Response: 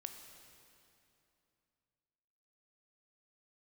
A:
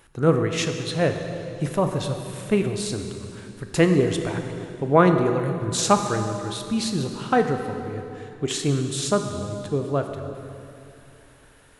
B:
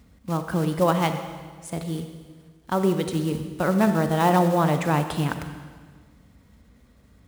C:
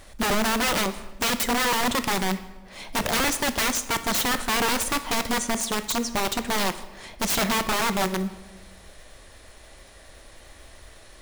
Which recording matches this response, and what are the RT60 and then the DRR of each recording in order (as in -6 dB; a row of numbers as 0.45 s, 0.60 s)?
A; 2.8 s, 1.6 s, 1.1 s; 5.5 dB, 7.5 dB, 11.0 dB